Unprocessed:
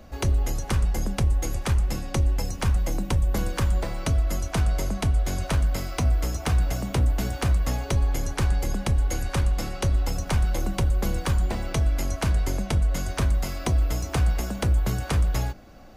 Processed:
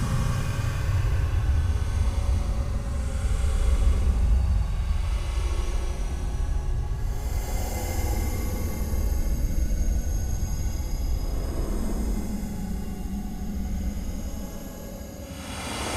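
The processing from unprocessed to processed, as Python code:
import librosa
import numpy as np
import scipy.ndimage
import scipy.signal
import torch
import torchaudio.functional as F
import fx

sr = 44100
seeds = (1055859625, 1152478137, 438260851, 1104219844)

y = fx.echo_multitap(x, sr, ms=(83, 127, 195, 658), db=(-13.0, -12.0, -18.0, -11.0))
y = fx.paulstretch(y, sr, seeds[0], factor=35.0, window_s=0.05, from_s=0.73)
y = y * 10.0 ** (-3.5 / 20.0)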